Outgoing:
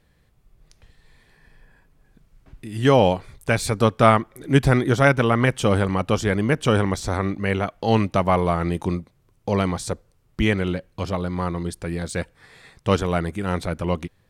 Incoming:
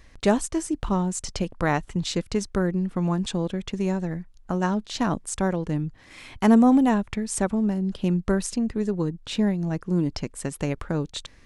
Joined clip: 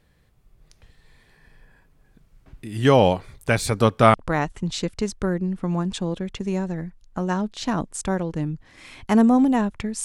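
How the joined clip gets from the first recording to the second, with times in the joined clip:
outgoing
4.14 switch to incoming from 1.47 s

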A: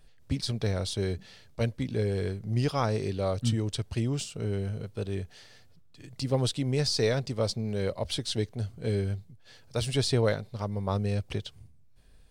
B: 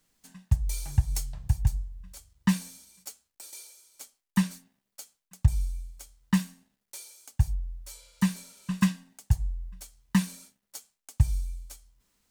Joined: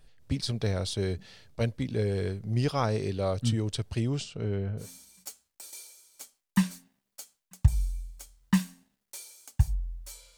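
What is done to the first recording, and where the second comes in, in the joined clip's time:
A
4.17–4.89 LPF 6900 Hz -> 1400 Hz
4.83 switch to B from 2.63 s, crossfade 0.12 s

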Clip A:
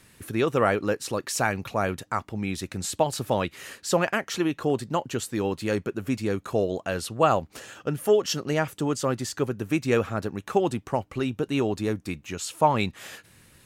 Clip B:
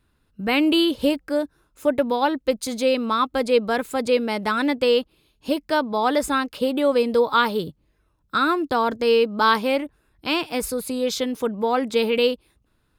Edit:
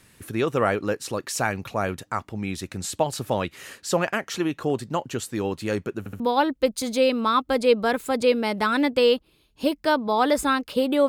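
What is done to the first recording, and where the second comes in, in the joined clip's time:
clip A
5.99 stutter in place 0.07 s, 3 plays
6.2 switch to clip B from 2.05 s

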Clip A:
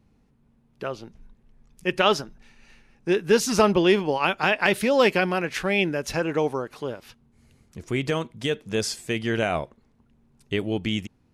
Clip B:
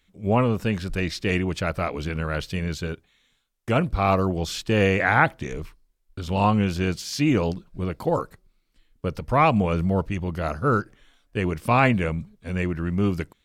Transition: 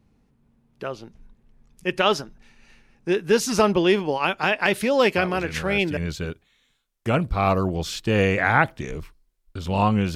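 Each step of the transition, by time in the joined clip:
clip A
5.17 add clip B from 1.79 s 0.80 s -6 dB
5.97 switch to clip B from 2.59 s

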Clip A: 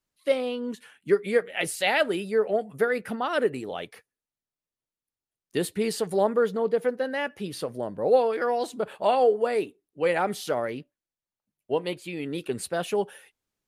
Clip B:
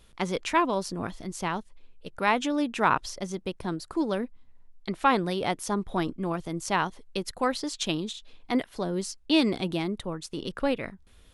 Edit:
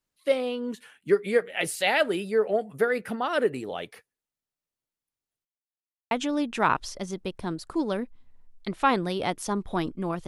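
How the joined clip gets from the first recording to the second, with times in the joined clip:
clip A
5.45–6.11 mute
6.11 switch to clip B from 2.32 s

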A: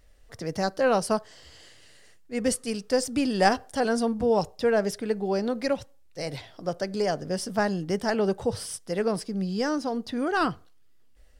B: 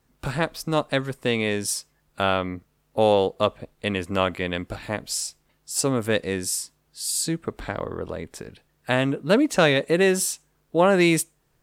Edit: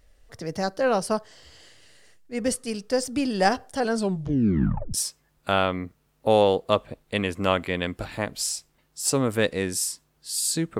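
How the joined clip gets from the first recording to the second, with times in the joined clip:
A
3.92 tape stop 1.02 s
4.94 switch to B from 1.65 s

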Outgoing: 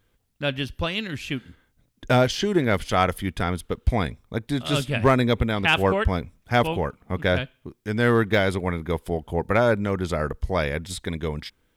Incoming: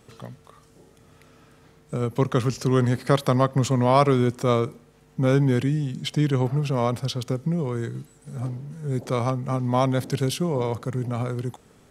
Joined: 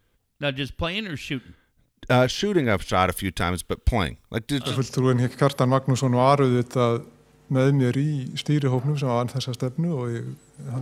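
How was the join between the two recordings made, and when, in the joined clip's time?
outgoing
3.05–4.78 high shelf 2600 Hz +8 dB
4.7 switch to incoming from 2.38 s, crossfade 0.16 s

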